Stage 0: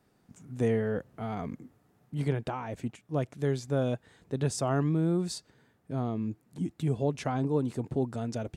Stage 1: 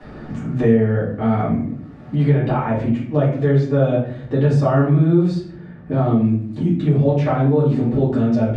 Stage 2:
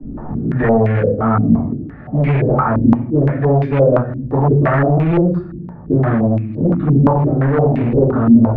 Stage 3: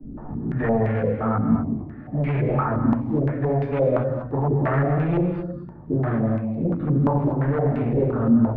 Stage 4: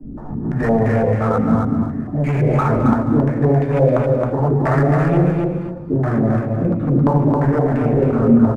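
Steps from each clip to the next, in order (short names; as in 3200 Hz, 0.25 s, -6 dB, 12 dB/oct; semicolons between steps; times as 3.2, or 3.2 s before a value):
LPF 2800 Hz 12 dB/oct; reverb RT60 0.50 s, pre-delay 3 ms, DRR -10.5 dB; three-band squash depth 70%
low shelf 79 Hz +11.5 dB; overloaded stage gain 13.5 dB; stepped low-pass 5.8 Hz 270–2400 Hz; gain +1.5 dB
non-linear reverb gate 0.27 s rising, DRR 7 dB; gain -8.5 dB
median filter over 9 samples; on a send: feedback echo 0.269 s, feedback 16%, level -3.5 dB; on the sum: gain +4.5 dB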